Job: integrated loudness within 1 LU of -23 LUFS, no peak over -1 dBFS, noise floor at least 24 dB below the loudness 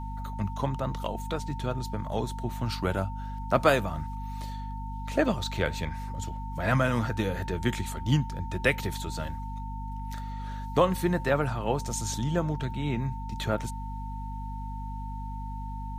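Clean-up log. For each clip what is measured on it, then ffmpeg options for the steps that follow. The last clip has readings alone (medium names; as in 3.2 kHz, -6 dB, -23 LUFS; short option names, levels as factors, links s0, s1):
hum 50 Hz; highest harmonic 250 Hz; hum level -34 dBFS; steady tone 900 Hz; tone level -40 dBFS; loudness -30.5 LUFS; peak level -9.0 dBFS; loudness target -23.0 LUFS
-> -af "bandreject=f=50:t=h:w=6,bandreject=f=100:t=h:w=6,bandreject=f=150:t=h:w=6,bandreject=f=200:t=h:w=6,bandreject=f=250:t=h:w=6"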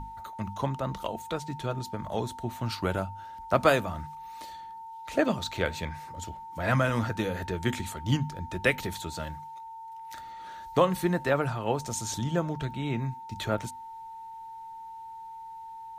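hum not found; steady tone 900 Hz; tone level -40 dBFS
-> -af "bandreject=f=900:w=30"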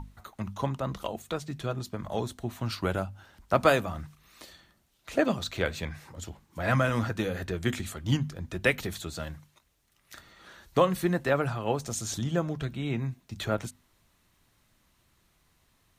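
steady tone not found; loudness -30.5 LUFS; peak level -9.5 dBFS; loudness target -23.0 LUFS
-> -af "volume=2.37"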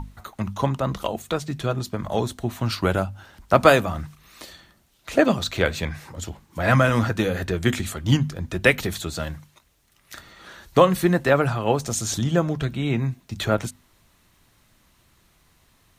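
loudness -23.0 LUFS; peak level -2.0 dBFS; noise floor -61 dBFS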